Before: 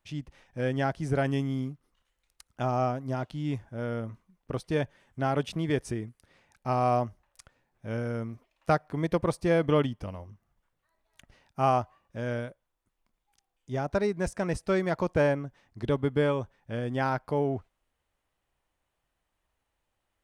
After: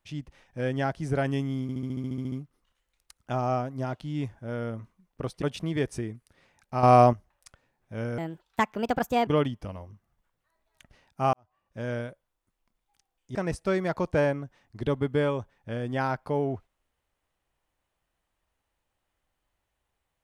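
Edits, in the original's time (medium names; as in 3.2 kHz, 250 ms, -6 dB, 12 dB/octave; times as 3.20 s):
1.62 s: stutter 0.07 s, 11 plays
4.72–5.35 s: delete
6.76–7.06 s: gain +8.5 dB
8.11–9.66 s: speed 142%
11.72–12.18 s: fade in quadratic
13.74–14.37 s: delete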